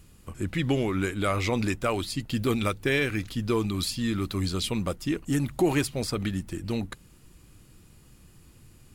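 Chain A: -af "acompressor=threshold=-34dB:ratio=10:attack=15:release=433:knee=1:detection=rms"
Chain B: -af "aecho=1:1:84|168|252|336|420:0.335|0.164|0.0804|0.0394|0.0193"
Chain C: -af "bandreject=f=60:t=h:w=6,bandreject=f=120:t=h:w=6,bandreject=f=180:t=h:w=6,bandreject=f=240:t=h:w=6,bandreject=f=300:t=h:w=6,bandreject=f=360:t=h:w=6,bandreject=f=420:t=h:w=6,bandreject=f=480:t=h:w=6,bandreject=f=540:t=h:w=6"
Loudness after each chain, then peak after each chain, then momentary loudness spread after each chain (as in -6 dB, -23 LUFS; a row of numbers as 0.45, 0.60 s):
-39.5, -27.5, -28.5 LUFS; -24.0, -12.0, -11.5 dBFS; 17, 7, 7 LU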